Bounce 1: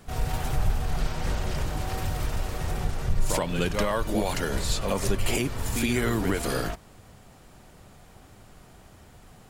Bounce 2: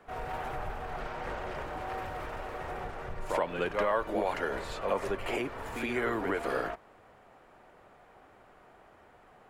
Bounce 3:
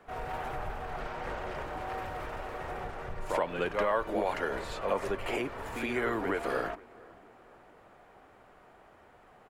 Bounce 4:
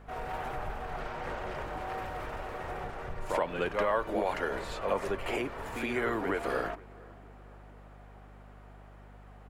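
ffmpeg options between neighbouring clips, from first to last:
ffmpeg -i in.wav -filter_complex "[0:a]acrossover=split=340 2400:gain=0.141 1 0.1[link_01][link_02][link_03];[link_01][link_02][link_03]amix=inputs=3:normalize=0" out.wav
ffmpeg -i in.wav -filter_complex "[0:a]asplit=2[link_01][link_02];[link_02]adelay=469,lowpass=frequency=2100:poles=1,volume=-23dB,asplit=2[link_03][link_04];[link_04]adelay=469,lowpass=frequency=2100:poles=1,volume=0.53,asplit=2[link_05][link_06];[link_06]adelay=469,lowpass=frequency=2100:poles=1,volume=0.53,asplit=2[link_07][link_08];[link_08]adelay=469,lowpass=frequency=2100:poles=1,volume=0.53[link_09];[link_01][link_03][link_05][link_07][link_09]amix=inputs=5:normalize=0" out.wav
ffmpeg -i in.wav -af "aeval=exprs='val(0)+0.00282*(sin(2*PI*50*n/s)+sin(2*PI*2*50*n/s)/2+sin(2*PI*3*50*n/s)/3+sin(2*PI*4*50*n/s)/4+sin(2*PI*5*50*n/s)/5)':channel_layout=same" out.wav

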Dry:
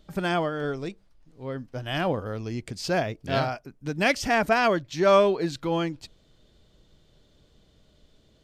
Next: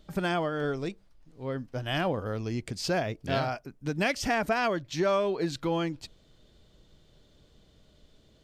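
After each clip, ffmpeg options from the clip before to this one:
ffmpeg -i in.wav -af "acompressor=threshold=-24dB:ratio=4" out.wav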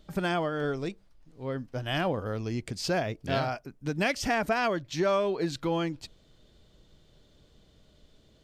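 ffmpeg -i in.wav -af anull out.wav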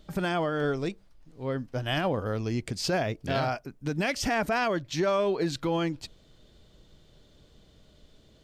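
ffmpeg -i in.wav -af "alimiter=limit=-20.5dB:level=0:latency=1:release=17,volume=2.5dB" out.wav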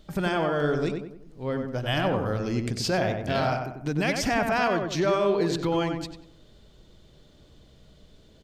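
ffmpeg -i in.wav -filter_complex "[0:a]asplit=2[link_01][link_02];[link_02]adelay=94,lowpass=frequency=1900:poles=1,volume=-4dB,asplit=2[link_03][link_04];[link_04]adelay=94,lowpass=frequency=1900:poles=1,volume=0.44,asplit=2[link_05][link_06];[link_06]adelay=94,lowpass=frequency=1900:poles=1,volume=0.44,asplit=2[link_07][link_08];[link_08]adelay=94,lowpass=frequency=1900:poles=1,volume=0.44,asplit=2[link_09][link_10];[link_10]adelay=94,lowpass=frequency=1900:poles=1,volume=0.44,asplit=2[link_11][link_12];[link_12]adelay=94,lowpass=frequency=1900:poles=1,volume=0.44[link_13];[link_01][link_03][link_05][link_07][link_09][link_11][link_13]amix=inputs=7:normalize=0,volume=1.5dB" out.wav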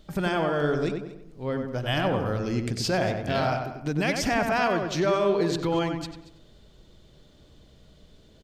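ffmpeg -i in.wav -af "aecho=1:1:231:0.119" out.wav

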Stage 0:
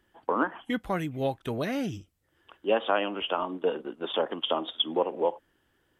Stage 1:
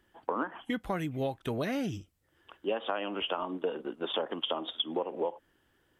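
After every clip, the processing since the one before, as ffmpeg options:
ffmpeg -i in.wav -af "acompressor=threshold=-28dB:ratio=6" out.wav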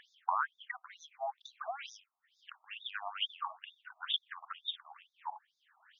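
ffmpeg -i in.wav -af "acompressor=mode=upward:threshold=-46dB:ratio=2.5,afftfilt=real='re*between(b*sr/1024,890*pow(5000/890,0.5+0.5*sin(2*PI*2.2*pts/sr))/1.41,890*pow(5000/890,0.5+0.5*sin(2*PI*2.2*pts/sr))*1.41)':imag='im*between(b*sr/1024,890*pow(5000/890,0.5+0.5*sin(2*PI*2.2*pts/sr))/1.41,890*pow(5000/890,0.5+0.5*sin(2*PI*2.2*pts/sr))*1.41)':win_size=1024:overlap=0.75,volume=3.5dB" out.wav

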